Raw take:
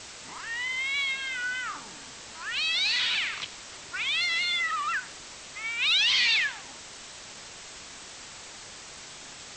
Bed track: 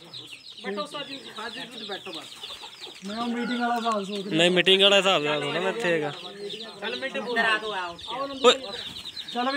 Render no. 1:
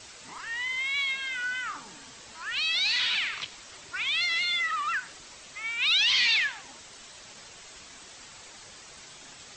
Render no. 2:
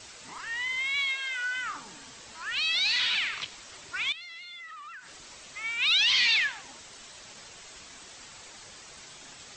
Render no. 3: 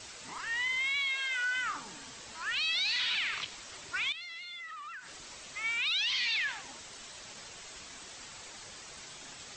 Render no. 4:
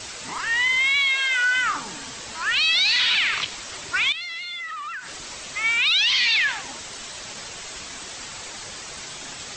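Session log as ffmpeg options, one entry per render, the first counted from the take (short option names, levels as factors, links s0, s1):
-af "afftdn=nr=6:nf=-45"
-filter_complex "[0:a]asettb=1/sr,asplit=3[s0][s1][s2];[s0]atrim=end=1.084[s3];[s1]atrim=start=1.08:end=1.56,asetpts=PTS-STARTPTS,afade=t=in:d=0.004:c=qsin,afade=t=out:st=0.476:d=0.004:c=qsin,highpass=f=390:w=0.5412,highpass=f=390:w=1.3066[s4];[s2]atrim=start=1.556[s5];[s3][s4]acrossfade=d=0.004:c1=hsin:c2=qsin[s6];[s6][s5]acrossfade=d=0.004:c1=qsin:c2=hsin,asettb=1/sr,asplit=3[s7][s8][s9];[s7]atrim=end=4.124[s10];[s8]atrim=start=4.12:end=5.28,asetpts=PTS-STARTPTS,afade=t=in:d=0.004:c=qsin,afade=t=out:st=1.156:d=0.004:c=qsin,acompressor=threshold=0.00708:ratio=6:attack=3.2:release=140:knee=1:detection=peak[s11];[s9]atrim=start=5.276[s12];[s10][s11]acrossfade=d=0.004:c1=hsin:c2=qsin[s13];[s13][s12]acrossfade=d=0.004:c1=qsin:c2=hsin"
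-af "alimiter=level_in=1.12:limit=0.0631:level=0:latency=1:release=39,volume=0.891"
-af "volume=3.76"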